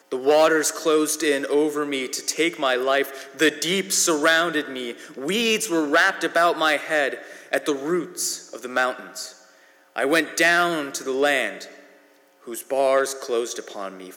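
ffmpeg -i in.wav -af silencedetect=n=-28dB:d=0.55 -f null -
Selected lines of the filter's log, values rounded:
silence_start: 9.26
silence_end: 9.96 | silence_duration: 0.70
silence_start: 11.64
silence_end: 12.49 | silence_duration: 0.85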